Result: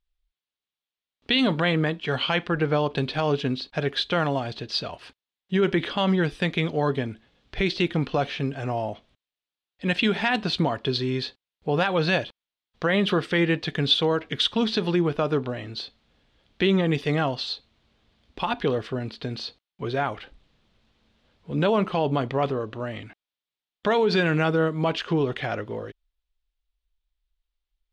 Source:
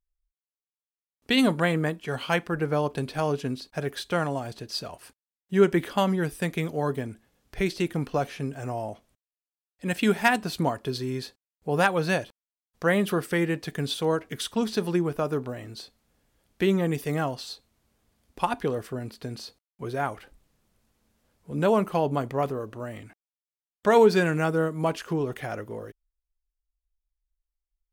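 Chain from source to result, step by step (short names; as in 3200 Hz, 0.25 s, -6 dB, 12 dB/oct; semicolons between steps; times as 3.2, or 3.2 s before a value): limiter -18 dBFS, peak gain reduction 10.5 dB; synth low-pass 3600 Hz, resonance Q 2.5; gain +4 dB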